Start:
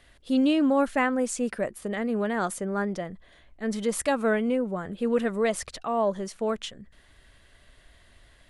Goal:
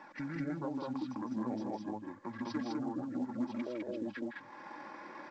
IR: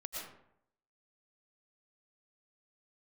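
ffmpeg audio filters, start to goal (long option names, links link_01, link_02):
-filter_complex "[0:a]bandreject=frequency=5500:width=14,atempo=1.6,flanger=delay=0.6:depth=8.2:regen=49:speed=0.52:shape=sinusoidal,asetrate=23361,aresample=44100,atempo=1.88775,areverse,acompressor=mode=upward:threshold=-51dB:ratio=2.5,areverse,highpass=frequency=120:width=0.5412,highpass=frequency=120:width=1.3066,acrossover=split=180 2400:gain=0.178 1 0.224[link_01][link_02][link_03];[link_01][link_02][link_03]amix=inputs=3:normalize=0,acompressor=threshold=-56dB:ratio=4,aecho=1:1:3.6:0.43,asplit=2[link_04][link_05];[link_05]aecho=0:1:157.4|204.1:0.501|0.891[link_06];[link_04][link_06]amix=inputs=2:normalize=0,volume=12.5dB" -ar 16000 -c:a pcm_mulaw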